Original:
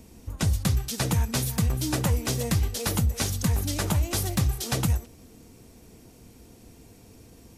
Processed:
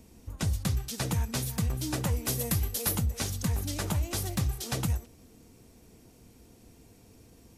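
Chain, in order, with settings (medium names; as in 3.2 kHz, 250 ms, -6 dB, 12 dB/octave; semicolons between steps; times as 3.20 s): 2.26–2.95 s: peaking EQ 12 kHz +12 dB 0.64 oct; trim -5 dB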